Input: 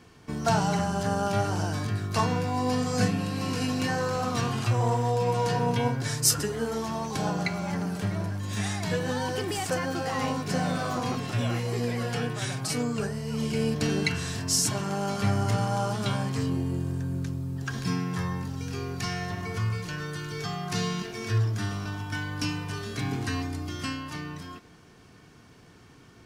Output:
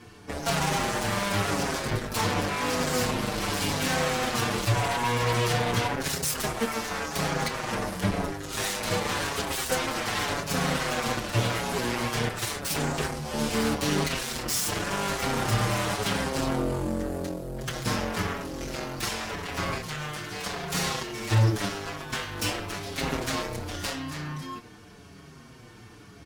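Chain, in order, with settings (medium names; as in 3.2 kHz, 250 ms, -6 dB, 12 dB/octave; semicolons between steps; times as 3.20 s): peaking EQ 11 kHz +5 dB 0.26 oct; peak limiter -18 dBFS, peak gain reduction 10 dB; Chebyshev shaper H 7 -8 dB, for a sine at -18 dBFS; doubling 26 ms -12 dB; endless flanger 6.3 ms -0.89 Hz; trim +2.5 dB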